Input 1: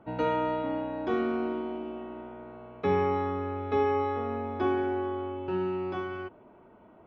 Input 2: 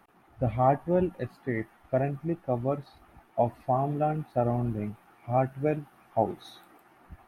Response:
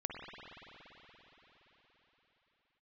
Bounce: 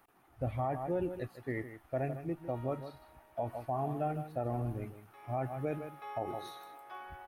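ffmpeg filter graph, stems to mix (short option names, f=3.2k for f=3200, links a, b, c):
-filter_complex "[0:a]highpass=f=680:w=0.5412,highpass=f=680:w=1.3066,adelay=2300,volume=-12.5dB,afade=t=in:st=5.47:d=0.31:silence=0.298538[a];[1:a]equalizer=f=200:w=7:g=-14,crystalizer=i=1:c=0,volume=-6dB,asplit=2[b][c];[c]volume=-12dB,aecho=0:1:156:1[d];[a][b][d]amix=inputs=3:normalize=0,alimiter=level_in=1.5dB:limit=-24dB:level=0:latency=1:release=61,volume=-1.5dB"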